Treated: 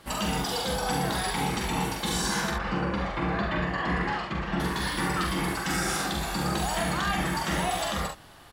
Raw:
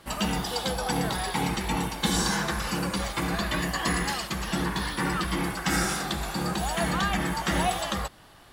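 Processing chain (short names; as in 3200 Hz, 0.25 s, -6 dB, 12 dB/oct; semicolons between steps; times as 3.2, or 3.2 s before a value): 2.51–4.6 LPF 2200 Hz 12 dB/oct; limiter -19.5 dBFS, peak gain reduction 6.5 dB; on a send: early reflections 44 ms -4 dB, 70 ms -8 dB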